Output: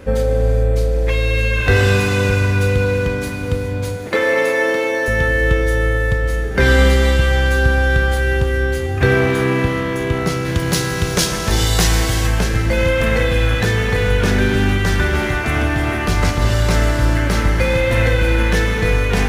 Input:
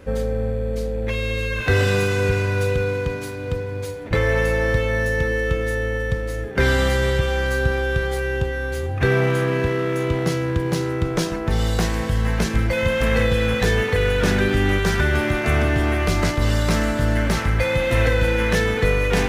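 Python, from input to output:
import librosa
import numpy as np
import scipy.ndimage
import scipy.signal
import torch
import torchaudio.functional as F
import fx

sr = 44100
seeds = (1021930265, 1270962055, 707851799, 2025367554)

y = fx.highpass(x, sr, hz=240.0, slope=24, at=(4.08, 5.08))
y = fx.high_shelf(y, sr, hz=2500.0, db=11.0, at=(10.45, 12.27))
y = fx.rider(y, sr, range_db=3, speed_s=2.0)
y = fx.rev_gated(y, sr, seeds[0], gate_ms=450, shape='flat', drr_db=5.0)
y = y * 10.0 ** (3.0 / 20.0)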